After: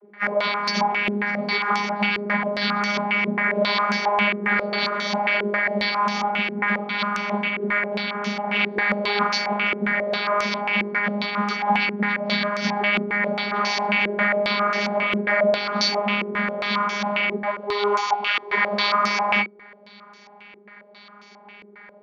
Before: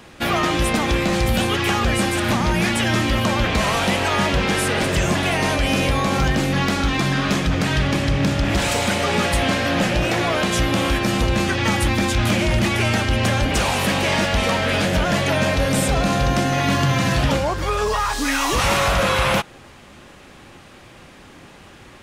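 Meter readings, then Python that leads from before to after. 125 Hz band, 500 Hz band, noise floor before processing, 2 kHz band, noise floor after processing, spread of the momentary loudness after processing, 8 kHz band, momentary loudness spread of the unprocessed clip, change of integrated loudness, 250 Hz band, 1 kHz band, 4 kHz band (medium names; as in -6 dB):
-15.5 dB, -3.0 dB, -44 dBFS, +0.5 dB, -49 dBFS, 4 LU, -15.0 dB, 2 LU, -2.5 dB, -6.0 dB, -0.5 dB, -3.5 dB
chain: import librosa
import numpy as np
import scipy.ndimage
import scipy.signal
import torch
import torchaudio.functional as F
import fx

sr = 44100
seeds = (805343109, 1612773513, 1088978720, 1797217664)

y = fx.freq_compress(x, sr, knee_hz=1000.0, ratio=1.5)
y = fx.tilt_eq(y, sr, slope=4.5)
y = fx.vocoder(y, sr, bands=32, carrier='saw', carrier_hz=205.0)
y = fx.comb_fb(y, sr, f0_hz=250.0, decay_s=0.34, harmonics='all', damping=0.0, mix_pct=70)
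y = fx.filter_held_lowpass(y, sr, hz=7.4, low_hz=380.0, high_hz=6000.0)
y = F.gain(torch.from_numpy(y), 4.5).numpy()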